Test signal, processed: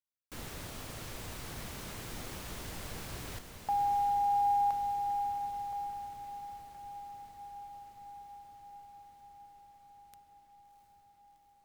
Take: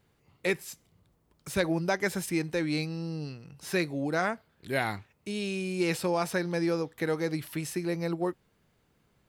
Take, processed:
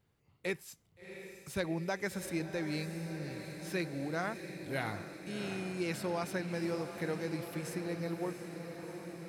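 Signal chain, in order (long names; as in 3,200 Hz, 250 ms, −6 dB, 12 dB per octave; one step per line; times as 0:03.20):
parametric band 100 Hz +4 dB 1.3 octaves
on a send: feedback delay with all-pass diffusion 704 ms, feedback 74%, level −9 dB
on the sum: level −8 dB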